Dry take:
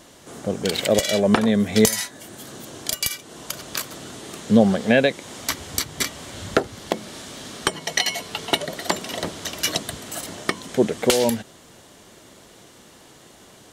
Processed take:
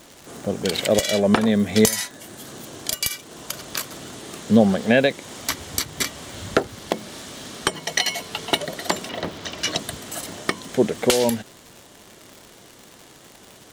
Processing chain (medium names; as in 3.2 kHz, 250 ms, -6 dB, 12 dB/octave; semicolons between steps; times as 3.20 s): 9.08–9.77 s: low-pass 3.3 kHz -> 7.1 kHz 12 dB/octave; crackle 180 per s -32 dBFS